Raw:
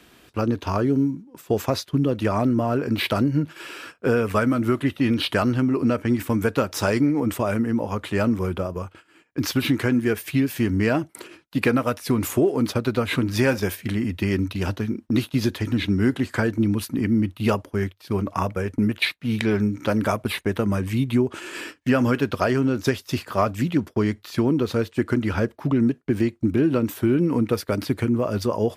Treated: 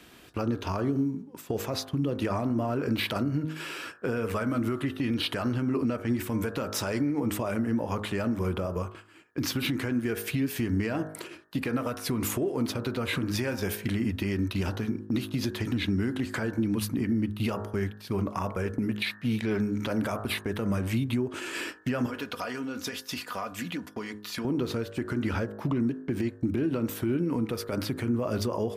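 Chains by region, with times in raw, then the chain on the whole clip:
22.06–24.45 low shelf 460 Hz -11 dB + comb 4.1 ms, depth 53% + compressor 4:1, threshold -30 dBFS
whole clip: de-hum 52.21 Hz, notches 35; compressor, threshold -23 dBFS; limiter -19 dBFS

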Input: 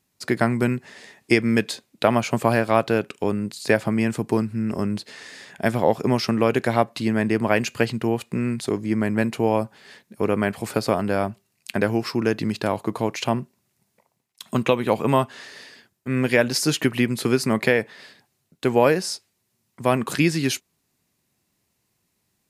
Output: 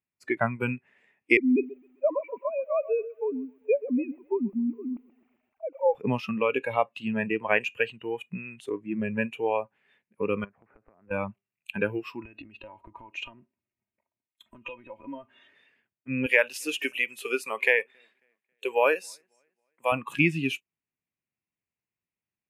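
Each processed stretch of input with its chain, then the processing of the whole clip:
1.37–5.95 sine-wave speech + running mean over 26 samples + lo-fi delay 0.131 s, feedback 55%, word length 8-bit, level -11.5 dB
10.44–11.11 LPF 1600 Hz 24 dB/oct + low shelf 76 Hz -10 dB + compressor 12:1, threshold -33 dBFS
12.25–15.55 tilt -1.5 dB/oct + comb 3.2 ms, depth 64% + compressor 20:1, threshold -25 dBFS
16.26–19.92 HPF 180 Hz + tone controls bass -12 dB, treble +7 dB + feedback echo 0.272 s, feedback 38%, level -23 dB
whole clip: spectral noise reduction 18 dB; resonant high shelf 3400 Hz -11 dB, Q 3; gain -4.5 dB

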